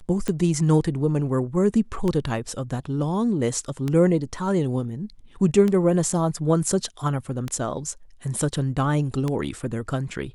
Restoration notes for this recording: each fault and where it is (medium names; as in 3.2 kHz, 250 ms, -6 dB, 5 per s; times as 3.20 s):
tick 33 1/3 rpm -13 dBFS